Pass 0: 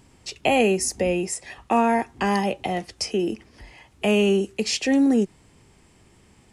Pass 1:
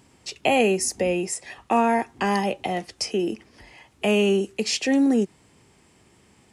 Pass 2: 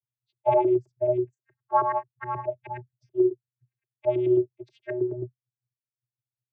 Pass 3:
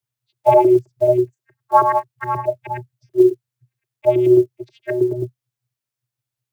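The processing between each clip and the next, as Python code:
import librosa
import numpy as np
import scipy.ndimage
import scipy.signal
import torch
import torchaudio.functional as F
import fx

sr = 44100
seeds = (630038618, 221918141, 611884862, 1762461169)

y1 = fx.highpass(x, sr, hz=130.0, slope=6)
y2 = fx.bin_expand(y1, sr, power=3.0)
y2 = fx.filter_lfo_lowpass(y2, sr, shape='saw_up', hz=9.4, low_hz=410.0, high_hz=1700.0, q=2.3)
y2 = fx.vocoder(y2, sr, bands=16, carrier='square', carrier_hz=123.0)
y3 = fx.block_float(y2, sr, bits=7)
y3 = y3 * 10.0 ** (9.0 / 20.0)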